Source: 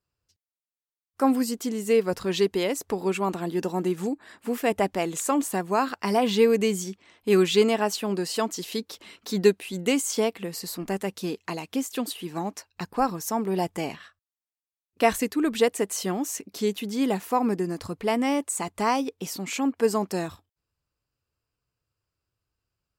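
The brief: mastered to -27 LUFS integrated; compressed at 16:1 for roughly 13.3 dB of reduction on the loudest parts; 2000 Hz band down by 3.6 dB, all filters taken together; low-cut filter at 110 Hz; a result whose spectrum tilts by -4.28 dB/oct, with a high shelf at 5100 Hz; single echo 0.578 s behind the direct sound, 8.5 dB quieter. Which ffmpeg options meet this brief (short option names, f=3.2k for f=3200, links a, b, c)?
-af "highpass=110,equalizer=f=2k:t=o:g=-4,highshelf=f=5.1k:g=-3,acompressor=threshold=-27dB:ratio=16,aecho=1:1:578:0.376,volume=6dB"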